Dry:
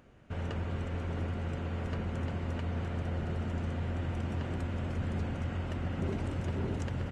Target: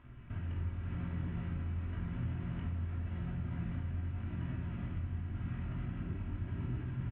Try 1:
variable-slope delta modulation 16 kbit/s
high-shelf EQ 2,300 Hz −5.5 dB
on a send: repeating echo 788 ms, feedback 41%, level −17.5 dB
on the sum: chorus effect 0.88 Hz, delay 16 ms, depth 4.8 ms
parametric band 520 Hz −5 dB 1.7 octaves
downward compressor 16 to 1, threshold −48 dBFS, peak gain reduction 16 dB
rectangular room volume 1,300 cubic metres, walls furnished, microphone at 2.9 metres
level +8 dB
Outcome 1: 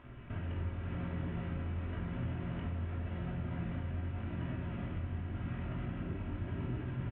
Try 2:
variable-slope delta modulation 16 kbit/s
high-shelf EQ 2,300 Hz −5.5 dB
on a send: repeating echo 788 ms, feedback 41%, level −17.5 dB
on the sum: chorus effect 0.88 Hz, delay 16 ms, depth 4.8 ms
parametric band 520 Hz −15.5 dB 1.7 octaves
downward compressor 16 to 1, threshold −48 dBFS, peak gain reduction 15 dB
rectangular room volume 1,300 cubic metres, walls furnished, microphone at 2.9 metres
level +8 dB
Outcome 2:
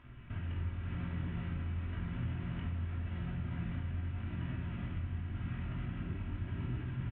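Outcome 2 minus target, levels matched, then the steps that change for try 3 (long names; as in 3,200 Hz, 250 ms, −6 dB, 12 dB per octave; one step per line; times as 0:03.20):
4,000 Hz band +5.0 dB
change: high-shelf EQ 2,300 Hz −14 dB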